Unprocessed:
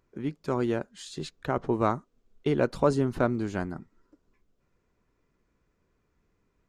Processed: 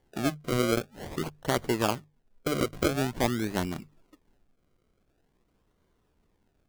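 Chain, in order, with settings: decimation with a swept rate 34×, swing 100% 0.47 Hz; hum notches 50/100/150 Hz; gain riding within 5 dB 0.5 s

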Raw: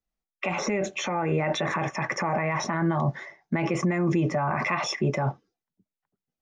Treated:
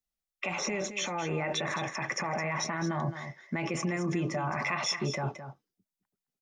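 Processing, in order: treble shelf 2.5 kHz +9.5 dB; delay 215 ms -10.5 dB; trim -7.5 dB

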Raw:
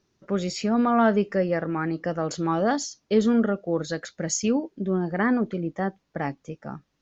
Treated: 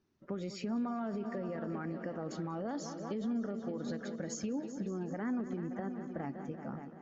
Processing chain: coarse spectral quantiser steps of 15 dB; treble shelf 3.6 kHz -9 dB; multi-head delay 190 ms, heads all three, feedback 46%, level -17 dB; peak limiter -20 dBFS, peak gain reduction 10.5 dB; compression, threshold -29 dBFS, peak gain reduction 6.5 dB; peaking EQ 250 Hz +5 dB 0.54 oct; trim -7 dB

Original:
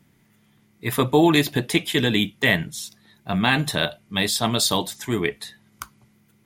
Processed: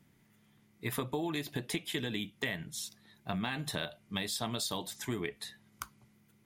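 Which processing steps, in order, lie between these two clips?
compression 12:1, threshold -25 dBFS, peak gain reduction 13.5 dB; trim -6.5 dB

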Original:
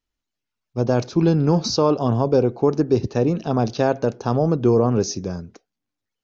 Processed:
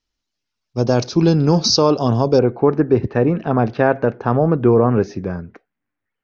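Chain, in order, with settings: resonant low-pass 5.4 kHz, resonance Q 2.2, from 2.39 s 1.9 kHz; trim +3 dB

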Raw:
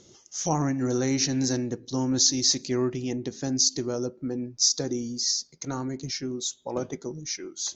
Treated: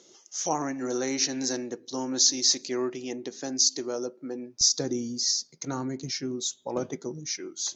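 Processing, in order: high-pass 340 Hz 12 dB/octave, from 4.61 s 120 Hz

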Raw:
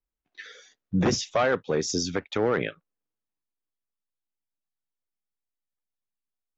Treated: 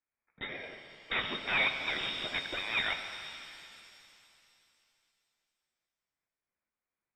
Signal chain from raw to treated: steep high-pass 1.3 kHz 96 dB/octave; in parallel at -2 dB: compression, threshold -45 dBFS, peak gain reduction 17 dB; on the sum: Chebyshev shaper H 8 -14 dB, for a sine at -17 dBFS; sine folder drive 7 dB, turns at -17 dBFS; tremolo saw up 2.6 Hz, depth 50%; speed mistake 48 kHz file played as 44.1 kHz; frequency inversion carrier 3.7 kHz; pitch-shifted reverb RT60 2.8 s, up +7 st, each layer -8 dB, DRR 6 dB; trim -6 dB

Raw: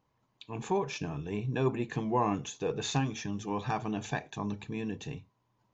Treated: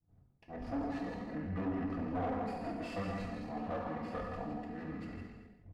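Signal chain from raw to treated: comb filter that takes the minimum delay 3 ms; wind noise 110 Hz -46 dBFS; FFT filter 120 Hz 0 dB, 210 Hz -6 dB, 5.1 kHz -26 dB; delay 164 ms -7.5 dB; gate -55 dBFS, range -49 dB; tilt EQ +2 dB/octave; hum notches 50/100/150/200/250/300/350/400/450/500 Hz; feedback comb 64 Hz, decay 0.28 s, harmonics all, mix 40%; gated-style reverb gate 430 ms falling, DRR -1.5 dB; pitch shift -5.5 st; overdrive pedal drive 21 dB, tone 1.4 kHz, clips at -29 dBFS; trim +2.5 dB; Vorbis 64 kbps 44.1 kHz

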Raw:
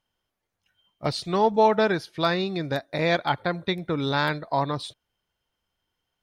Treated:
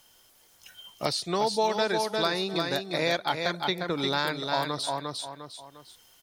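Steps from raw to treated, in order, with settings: tone controls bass -6 dB, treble +13 dB; on a send: feedback delay 352 ms, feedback 17%, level -6 dB; on the sum: three bands compressed up and down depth 70%; trim -4.5 dB

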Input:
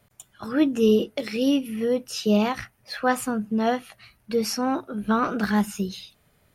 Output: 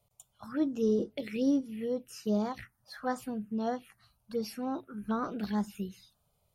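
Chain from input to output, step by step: 0.98–1.61 s: bass shelf 440 Hz +5 dB; touch-sensitive phaser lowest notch 280 Hz, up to 2.7 kHz, full sweep at -18 dBFS; trim -9 dB

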